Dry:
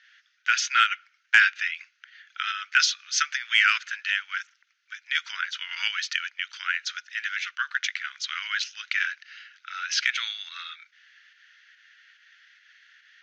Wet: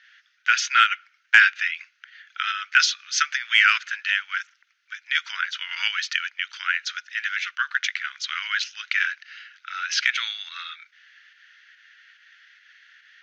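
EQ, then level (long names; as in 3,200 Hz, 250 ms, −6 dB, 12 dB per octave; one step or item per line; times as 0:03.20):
parametric band 190 Hz −12.5 dB 0.65 octaves
high-shelf EQ 4,900 Hz −5.5 dB
+4.0 dB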